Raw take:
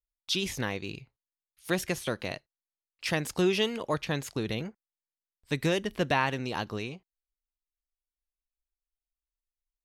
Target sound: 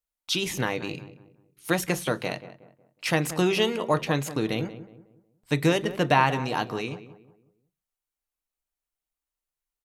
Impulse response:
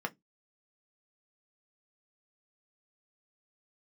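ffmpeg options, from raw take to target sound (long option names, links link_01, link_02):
-filter_complex "[0:a]asplit=2[link_01][link_02];[link_02]adelay=183,lowpass=frequency=1400:poles=1,volume=-13dB,asplit=2[link_03][link_04];[link_04]adelay=183,lowpass=frequency=1400:poles=1,volume=0.38,asplit=2[link_05][link_06];[link_06]adelay=183,lowpass=frequency=1400:poles=1,volume=0.38,asplit=2[link_07][link_08];[link_08]adelay=183,lowpass=frequency=1400:poles=1,volume=0.38[link_09];[link_01][link_03][link_05][link_07][link_09]amix=inputs=5:normalize=0,asplit=2[link_10][link_11];[1:a]atrim=start_sample=2205,asetrate=29988,aresample=44100,highshelf=frequency=5500:gain=11[link_12];[link_11][link_12]afir=irnorm=-1:irlink=0,volume=-6.5dB[link_13];[link_10][link_13]amix=inputs=2:normalize=0"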